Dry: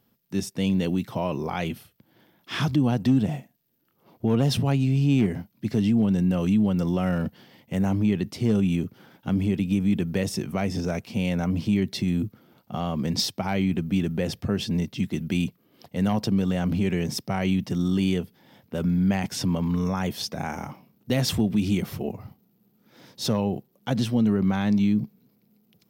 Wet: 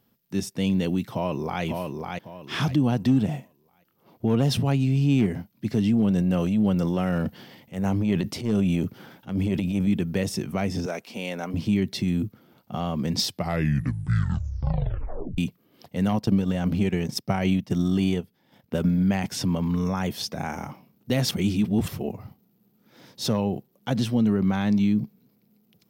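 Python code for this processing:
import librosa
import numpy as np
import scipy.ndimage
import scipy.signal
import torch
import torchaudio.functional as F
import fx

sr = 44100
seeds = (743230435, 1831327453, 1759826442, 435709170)

y = fx.echo_throw(x, sr, start_s=1.13, length_s=0.5, ms=550, feedback_pct=30, wet_db=-4.0)
y = fx.transient(y, sr, attack_db=-11, sustain_db=6, at=(5.93, 9.87))
y = fx.highpass(y, sr, hz=340.0, slope=12, at=(10.86, 11.54))
y = fx.transient(y, sr, attack_db=5, sustain_db=-9, at=(16.11, 19.03))
y = fx.edit(y, sr, fx.tape_stop(start_s=13.24, length_s=2.14),
    fx.reverse_span(start_s=21.31, length_s=0.57), tone=tone)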